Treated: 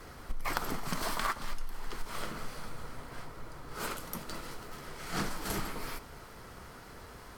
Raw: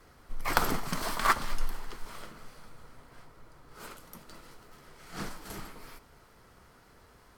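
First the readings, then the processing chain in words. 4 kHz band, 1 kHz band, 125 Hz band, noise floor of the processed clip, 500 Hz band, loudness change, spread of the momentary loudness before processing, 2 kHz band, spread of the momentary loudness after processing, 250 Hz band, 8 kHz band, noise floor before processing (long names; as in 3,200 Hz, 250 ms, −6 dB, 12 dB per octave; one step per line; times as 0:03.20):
−1.0 dB, −4.0 dB, +0.5 dB, −50 dBFS, −0.5 dB, −6.0 dB, 23 LU, −3.5 dB, 14 LU, +0.5 dB, −0.5 dB, −59 dBFS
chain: downward compressor 16 to 1, threshold −38 dBFS, peak gain reduction 20 dB
level +9 dB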